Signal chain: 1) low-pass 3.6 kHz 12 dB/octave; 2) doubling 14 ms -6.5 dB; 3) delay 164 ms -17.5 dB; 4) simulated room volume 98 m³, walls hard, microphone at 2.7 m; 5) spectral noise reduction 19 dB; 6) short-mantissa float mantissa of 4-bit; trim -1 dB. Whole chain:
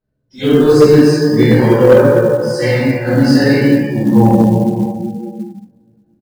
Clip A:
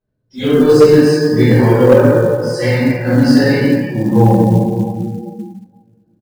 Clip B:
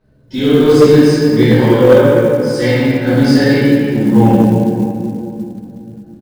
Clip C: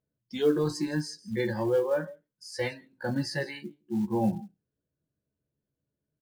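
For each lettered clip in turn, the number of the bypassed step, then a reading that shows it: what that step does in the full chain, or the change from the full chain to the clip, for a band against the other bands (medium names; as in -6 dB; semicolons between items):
2, 125 Hz band +1.5 dB; 5, 4 kHz band +1.5 dB; 4, crest factor change +7.5 dB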